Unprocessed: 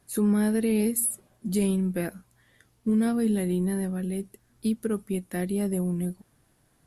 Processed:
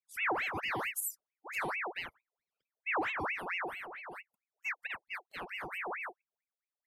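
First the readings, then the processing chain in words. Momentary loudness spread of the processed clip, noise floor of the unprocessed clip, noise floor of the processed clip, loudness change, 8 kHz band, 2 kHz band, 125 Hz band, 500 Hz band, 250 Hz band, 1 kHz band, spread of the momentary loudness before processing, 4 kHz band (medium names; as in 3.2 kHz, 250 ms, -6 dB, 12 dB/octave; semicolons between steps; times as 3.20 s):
12 LU, -66 dBFS, under -85 dBFS, -10.0 dB, -12.5 dB, +7.5 dB, -24.5 dB, -14.0 dB, -24.5 dB, +6.0 dB, 10 LU, 0.0 dB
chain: expander on every frequency bin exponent 2; ring modulator with a swept carrier 1.5 kHz, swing 65%, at 4.5 Hz; trim -5.5 dB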